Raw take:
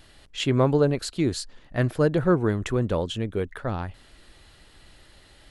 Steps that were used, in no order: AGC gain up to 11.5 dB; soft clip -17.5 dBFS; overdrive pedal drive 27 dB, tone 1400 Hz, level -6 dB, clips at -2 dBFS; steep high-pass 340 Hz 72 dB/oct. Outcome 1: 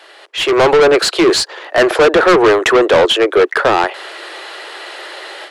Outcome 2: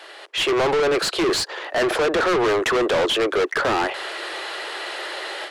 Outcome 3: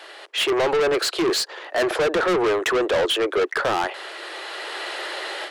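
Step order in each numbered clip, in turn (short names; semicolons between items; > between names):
steep high-pass > overdrive pedal > soft clip > AGC; steep high-pass > AGC > overdrive pedal > soft clip; overdrive pedal > AGC > steep high-pass > soft clip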